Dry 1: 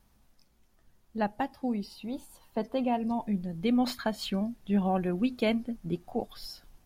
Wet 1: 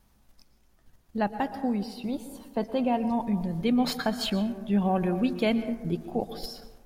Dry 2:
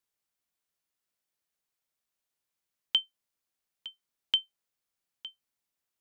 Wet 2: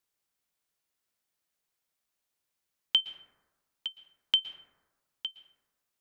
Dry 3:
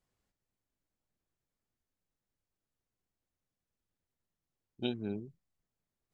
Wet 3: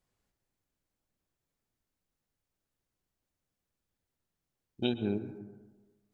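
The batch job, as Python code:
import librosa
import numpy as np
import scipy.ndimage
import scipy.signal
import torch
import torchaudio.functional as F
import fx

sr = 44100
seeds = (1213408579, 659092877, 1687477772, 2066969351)

p1 = fx.level_steps(x, sr, step_db=20)
p2 = x + (p1 * librosa.db_to_amplitude(3.0))
y = fx.rev_plate(p2, sr, seeds[0], rt60_s=1.3, hf_ratio=0.3, predelay_ms=105, drr_db=11.0)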